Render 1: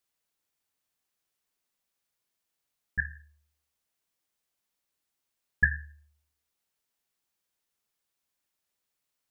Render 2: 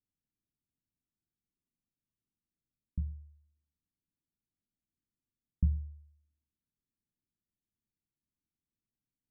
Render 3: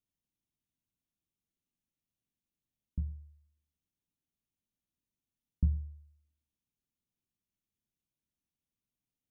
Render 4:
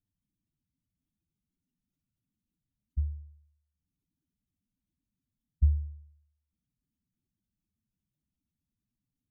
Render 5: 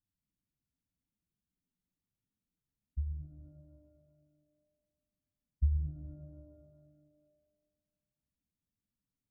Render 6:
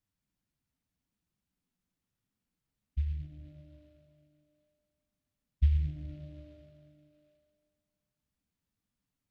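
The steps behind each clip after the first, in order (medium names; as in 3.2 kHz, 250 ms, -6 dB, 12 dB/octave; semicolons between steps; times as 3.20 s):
inverse Chebyshev low-pass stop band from 1.7 kHz, stop band 80 dB; trim +4.5 dB
comb filter that takes the minimum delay 0.32 ms
spectral contrast enhancement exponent 2.5; trim +5 dB
pitch-shifted reverb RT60 1.7 s, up +12 st, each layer -8 dB, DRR 5 dB; trim -6.5 dB
delay time shaken by noise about 2.5 kHz, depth 0.039 ms; trim +4 dB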